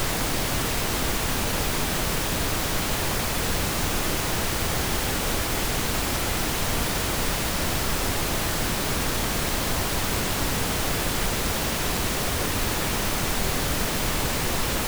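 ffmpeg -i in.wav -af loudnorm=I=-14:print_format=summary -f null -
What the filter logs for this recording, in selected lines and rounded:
Input Integrated:    -24.8 LUFS
Input True Peak:     -11.8 dBTP
Input LRA:             0.1 LU
Input Threshold:     -34.8 LUFS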